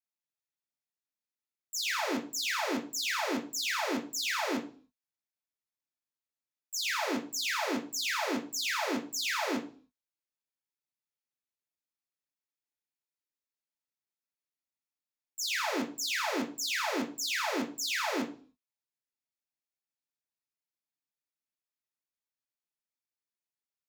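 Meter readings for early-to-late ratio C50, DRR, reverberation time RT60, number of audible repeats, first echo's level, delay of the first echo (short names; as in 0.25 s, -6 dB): 11.5 dB, 0.0 dB, 0.40 s, none, none, none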